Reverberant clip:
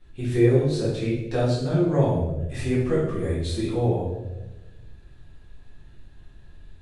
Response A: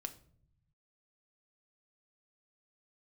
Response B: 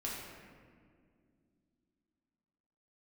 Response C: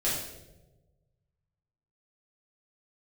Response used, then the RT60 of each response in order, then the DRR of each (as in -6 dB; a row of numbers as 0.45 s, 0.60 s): C; 0.60 s, 2.2 s, 1.1 s; 8.0 dB, -5.5 dB, -9.0 dB